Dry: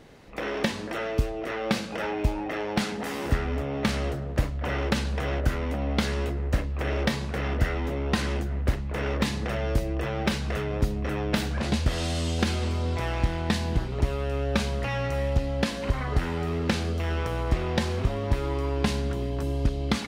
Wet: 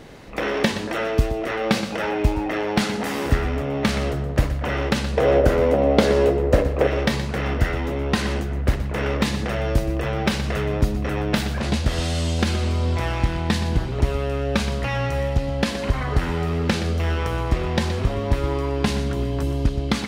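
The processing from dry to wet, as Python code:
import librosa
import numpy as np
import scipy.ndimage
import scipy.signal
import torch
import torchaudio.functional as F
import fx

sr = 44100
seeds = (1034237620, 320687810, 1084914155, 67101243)

y = fx.rider(x, sr, range_db=4, speed_s=0.5)
y = fx.peak_eq(y, sr, hz=500.0, db=14.0, octaves=1.2, at=(5.17, 6.87))
y = y + 10.0 ** (-12.0 / 20.0) * np.pad(y, (int(122 * sr / 1000.0), 0))[:len(y)]
y = y * 10.0 ** (4.5 / 20.0)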